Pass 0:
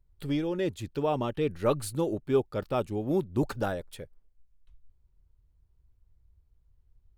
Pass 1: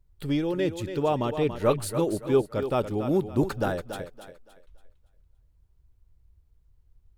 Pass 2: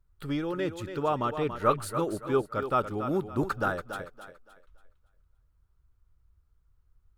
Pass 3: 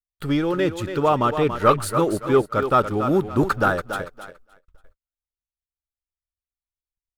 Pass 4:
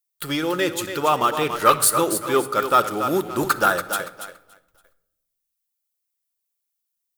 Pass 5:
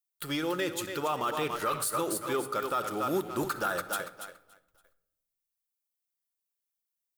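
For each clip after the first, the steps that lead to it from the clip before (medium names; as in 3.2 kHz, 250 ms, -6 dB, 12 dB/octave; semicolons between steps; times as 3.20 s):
thinning echo 283 ms, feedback 32%, high-pass 200 Hz, level -9 dB; trim +3 dB
peaking EQ 1.3 kHz +13.5 dB 0.65 oct; trim -5 dB
waveshaping leveller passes 1; gate -55 dBFS, range -38 dB; trim +5.5 dB
RIAA curve recording; simulated room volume 2900 m³, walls furnished, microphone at 0.84 m; trim +1 dB
peak limiter -13 dBFS, peak gain reduction 11 dB; trim -7.5 dB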